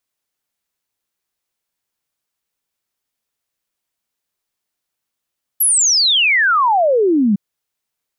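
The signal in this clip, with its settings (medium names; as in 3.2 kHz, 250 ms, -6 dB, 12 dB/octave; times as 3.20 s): log sweep 12 kHz -> 190 Hz 1.76 s -10.5 dBFS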